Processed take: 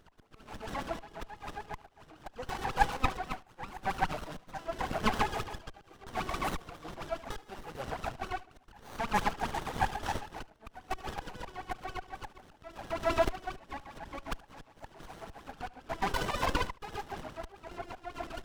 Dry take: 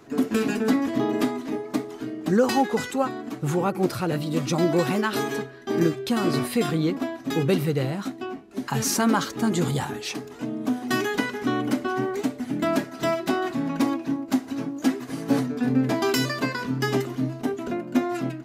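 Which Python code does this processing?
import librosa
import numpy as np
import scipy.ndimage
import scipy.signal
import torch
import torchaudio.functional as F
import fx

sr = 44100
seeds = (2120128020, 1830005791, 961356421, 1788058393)

y = fx.reverse_delay(x, sr, ms=151, wet_db=-4.0)
y = scipy.signal.sosfilt(scipy.signal.butter(4, 55.0, 'highpass', fs=sr, output='sos'), y)
y = fx.low_shelf(y, sr, hz=120.0, db=10.5)
y = fx.hum_notches(y, sr, base_hz=60, count=4)
y = fx.auto_swell(y, sr, attack_ms=655.0)
y = fx.rider(y, sr, range_db=5, speed_s=2.0)
y = fx.transient(y, sr, attack_db=-9, sustain_db=4, at=(11.1, 13.35))
y = fx.filter_lfo_highpass(y, sr, shape='sine', hz=7.4, low_hz=730.0, high_hz=2800.0, q=7.8)
y = y + 10.0 ** (-21.0 / 20.0) * np.pad(y, (int(74 * sr / 1000.0), 0))[:len(y)]
y = fx.running_max(y, sr, window=17)
y = y * 10.0 ** (-7.5 / 20.0)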